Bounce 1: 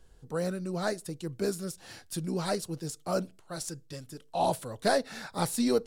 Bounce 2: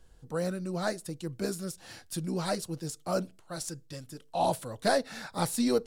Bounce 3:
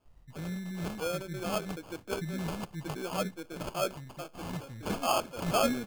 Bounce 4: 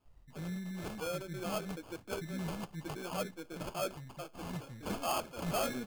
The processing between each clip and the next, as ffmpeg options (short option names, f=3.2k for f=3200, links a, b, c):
-af "bandreject=f=410:w=12"
-filter_complex "[0:a]acrossover=split=270|1400[a][b][c];[a]adelay=50[d];[b]adelay=680[e];[d][e][c]amix=inputs=3:normalize=0,acrusher=samples=23:mix=1:aa=0.000001"
-filter_complex "[0:a]flanger=delay=0.7:depth=5.8:regen=-59:speed=0.97:shape=triangular,acrossover=split=8000[a][b];[a]asoftclip=type=tanh:threshold=-29dB[c];[c][b]amix=inputs=2:normalize=0,volume=1dB"